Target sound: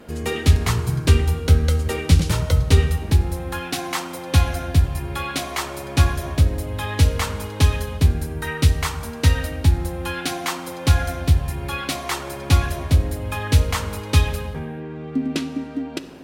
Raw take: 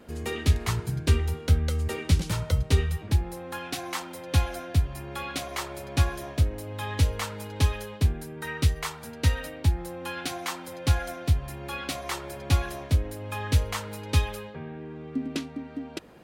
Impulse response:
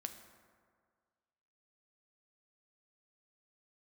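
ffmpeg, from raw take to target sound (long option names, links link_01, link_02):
-filter_complex "[0:a]asplit=2[link_01][link_02];[1:a]atrim=start_sample=2205,afade=type=out:start_time=0.37:duration=0.01,atrim=end_sample=16758,asetrate=32193,aresample=44100[link_03];[link_02][link_03]afir=irnorm=-1:irlink=0,volume=7dB[link_04];[link_01][link_04]amix=inputs=2:normalize=0,volume=-2dB"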